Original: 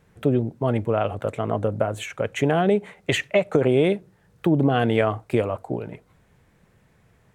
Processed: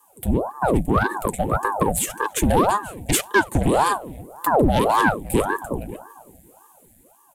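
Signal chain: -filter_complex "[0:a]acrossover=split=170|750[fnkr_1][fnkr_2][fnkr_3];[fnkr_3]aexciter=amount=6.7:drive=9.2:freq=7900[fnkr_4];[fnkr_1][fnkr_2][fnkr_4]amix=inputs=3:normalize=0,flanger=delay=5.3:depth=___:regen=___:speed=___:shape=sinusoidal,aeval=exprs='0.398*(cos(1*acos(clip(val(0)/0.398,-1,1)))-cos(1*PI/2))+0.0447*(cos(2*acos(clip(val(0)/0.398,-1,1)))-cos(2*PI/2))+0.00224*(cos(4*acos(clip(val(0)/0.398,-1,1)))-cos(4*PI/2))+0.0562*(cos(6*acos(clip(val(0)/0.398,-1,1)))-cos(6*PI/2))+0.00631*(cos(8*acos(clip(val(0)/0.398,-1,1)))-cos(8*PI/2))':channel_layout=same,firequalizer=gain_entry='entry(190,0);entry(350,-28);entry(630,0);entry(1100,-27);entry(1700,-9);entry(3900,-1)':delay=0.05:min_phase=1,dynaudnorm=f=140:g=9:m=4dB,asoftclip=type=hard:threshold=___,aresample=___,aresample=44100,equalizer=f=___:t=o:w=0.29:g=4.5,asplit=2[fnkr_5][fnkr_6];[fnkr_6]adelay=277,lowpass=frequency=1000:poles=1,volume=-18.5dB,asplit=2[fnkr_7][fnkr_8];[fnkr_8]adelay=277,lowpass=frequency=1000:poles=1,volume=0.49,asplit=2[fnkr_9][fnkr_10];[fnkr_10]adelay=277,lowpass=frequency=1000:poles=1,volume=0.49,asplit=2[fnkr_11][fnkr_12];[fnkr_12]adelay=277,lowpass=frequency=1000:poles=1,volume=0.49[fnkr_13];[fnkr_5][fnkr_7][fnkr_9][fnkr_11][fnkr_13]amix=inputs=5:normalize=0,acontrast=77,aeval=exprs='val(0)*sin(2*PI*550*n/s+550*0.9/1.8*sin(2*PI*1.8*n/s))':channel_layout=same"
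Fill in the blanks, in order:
3, -27, 1.9, -14.5dB, 32000, 700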